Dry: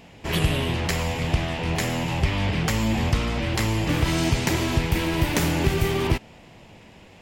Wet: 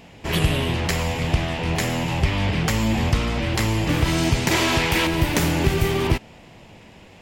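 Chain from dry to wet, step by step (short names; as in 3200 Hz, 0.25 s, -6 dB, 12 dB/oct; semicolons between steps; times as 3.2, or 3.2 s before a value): 4.51–5.07 overdrive pedal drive 13 dB, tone 7700 Hz, clips at -10 dBFS; gain +2 dB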